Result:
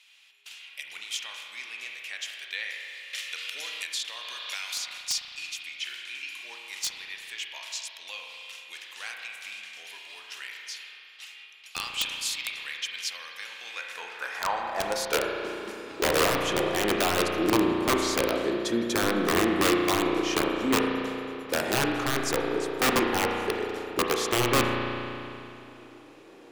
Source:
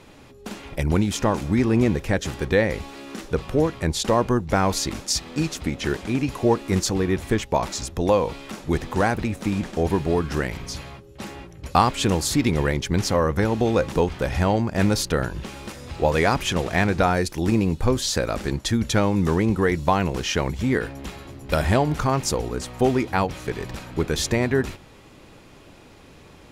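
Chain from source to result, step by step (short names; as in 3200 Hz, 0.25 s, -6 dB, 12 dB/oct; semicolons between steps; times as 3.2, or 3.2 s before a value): high-pass sweep 2800 Hz -> 340 Hz, 13.55–15.5; wrapped overs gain 10.5 dB; on a send at -1 dB: reverb RT60 2.8 s, pre-delay 34 ms; 3.13–4.98 on the sum: three-band squash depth 100%; gain -7 dB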